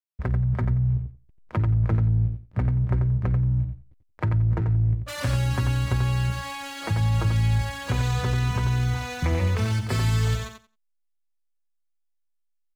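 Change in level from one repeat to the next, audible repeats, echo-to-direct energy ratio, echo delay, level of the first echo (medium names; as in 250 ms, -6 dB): -16.0 dB, 2, -7.0 dB, 89 ms, -7.0 dB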